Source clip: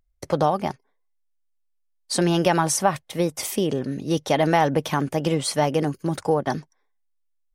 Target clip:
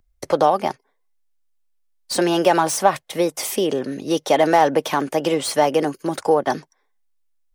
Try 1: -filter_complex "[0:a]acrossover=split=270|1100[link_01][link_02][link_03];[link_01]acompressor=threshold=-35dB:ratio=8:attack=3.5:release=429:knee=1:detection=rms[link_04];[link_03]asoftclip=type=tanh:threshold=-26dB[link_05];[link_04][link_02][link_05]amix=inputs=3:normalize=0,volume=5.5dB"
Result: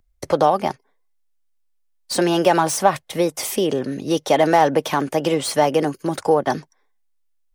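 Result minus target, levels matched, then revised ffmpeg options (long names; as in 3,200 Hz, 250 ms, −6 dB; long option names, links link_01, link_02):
downward compressor: peak gain reduction −6 dB
-filter_complex "[0:a]acrossover=split=270|1100[link_01][link_02][link_03];[link_01]acompressor=threshold=-42dB:ratio=8:attack=3.5:release=429:knee=1:detection=rms[link_04];[link_03]asoftclip=type=tanh:threshold=-26dB[link_05];[link_04][link_02][link_05]amix=inputs=3:normalize=0,volume=5.5dB"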